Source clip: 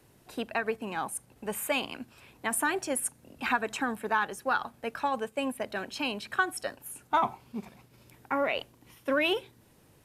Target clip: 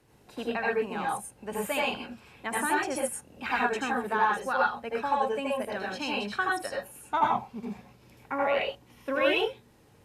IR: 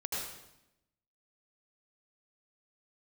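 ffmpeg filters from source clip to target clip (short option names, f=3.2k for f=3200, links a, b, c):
-filter_complex "[0:a]highshelf=f=10k:g=-10.5[a];[1:a]atrim=start_sample=2205,afade=t=out:st=0.18:d=0.01,atrim=end_sample=8379[b];[a][b]afir=irnorm=-1:irlink=0"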